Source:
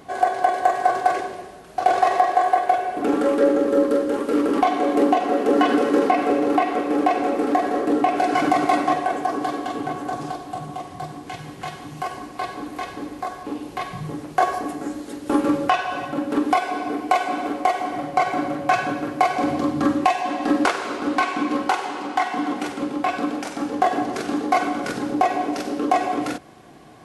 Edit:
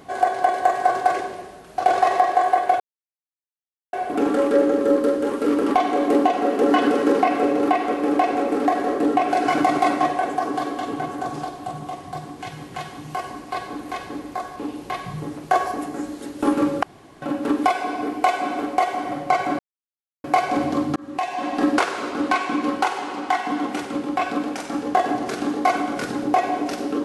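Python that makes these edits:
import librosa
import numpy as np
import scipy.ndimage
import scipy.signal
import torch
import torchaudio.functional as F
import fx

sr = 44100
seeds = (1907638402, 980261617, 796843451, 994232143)

y = fx.edit(x, sr, fx.insert_silence(at_s=2.8, length_s=1.13),
    fx.room_tone_fill(start_s=15.7, length_s=0.39),
    fx.silence(start_s=18.46, length_s=0.65),
    fx.fade_in_span(start_s=19.83, length_s=0.54), tone=tone)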